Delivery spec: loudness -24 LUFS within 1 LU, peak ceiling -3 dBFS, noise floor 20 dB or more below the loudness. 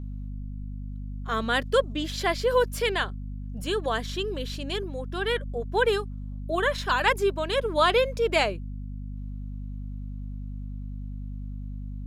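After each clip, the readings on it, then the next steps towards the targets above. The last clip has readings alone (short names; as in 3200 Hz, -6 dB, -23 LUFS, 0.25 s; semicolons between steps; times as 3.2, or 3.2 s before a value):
hum 50 Hz; harmonics up to 250 Hz; hum level -32 dBFS; loudness -26.5 LUFS; peak -8.5 dBFS; loudness target -24.0 LUFS
-> notches 50/100/150/200/250 Hz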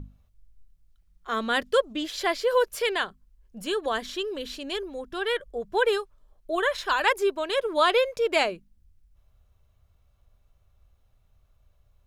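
hum none; loudness -26.5 LUFS; peak -9.0 dBFS; loudness target -24.0 LUFS
-> gain +2.5 dB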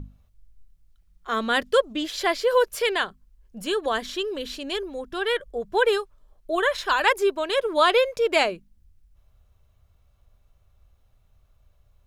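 loudness -24.0 LUFS; peak -6.5 dBFS; noise floor -62 dBFS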